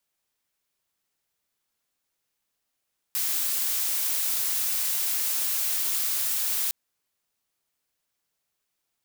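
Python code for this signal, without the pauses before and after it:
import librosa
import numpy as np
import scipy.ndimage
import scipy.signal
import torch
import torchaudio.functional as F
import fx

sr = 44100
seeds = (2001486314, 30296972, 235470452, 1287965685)

y = fx.noise_colour(sr, seeds[0], length_s=3.56, colour='blue', level_db=-26.5)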